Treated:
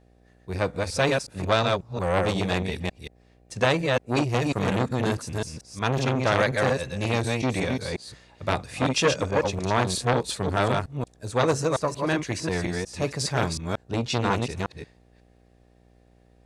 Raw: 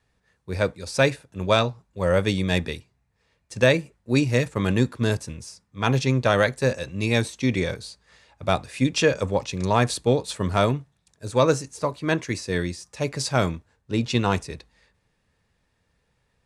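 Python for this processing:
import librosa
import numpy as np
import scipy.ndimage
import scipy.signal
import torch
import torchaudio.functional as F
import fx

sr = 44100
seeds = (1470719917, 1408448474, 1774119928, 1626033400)

y = fx.reverse_delay(x, sr, ms=181, wet_db=-3.5)
y = fx.dmg_buzz(y, sr, base_hz=60.0, harmonics=13, level_db=-58.0, tilt_db=-4, odd_only=False)
y = fx.transformer_sat(y, sr, knee_hz=1400.0)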